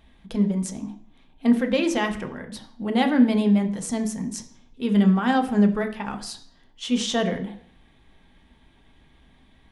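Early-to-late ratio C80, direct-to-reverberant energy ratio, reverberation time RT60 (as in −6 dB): 15.5 dB, 4.0 dB, 0.60 s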